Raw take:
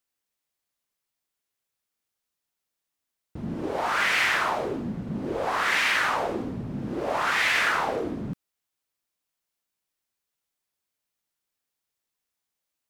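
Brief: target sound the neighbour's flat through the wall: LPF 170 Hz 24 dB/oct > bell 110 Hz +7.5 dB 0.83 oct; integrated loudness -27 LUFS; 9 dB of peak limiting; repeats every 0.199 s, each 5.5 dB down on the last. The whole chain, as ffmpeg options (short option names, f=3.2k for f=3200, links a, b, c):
-af "alimiter=limit=-19.5dB:level=0:latency=1,lowpass=f=170:w=0.5412,lowpass=f=170:w=1.3066,equalizer=f=110:t=o:w=0.83:g=7.5,aecho=1:1:199|398|597|796|995|1194|1393:0.531|0.281|0.149|0.079|0.0419|0.0222|0.0118,volume=11dB"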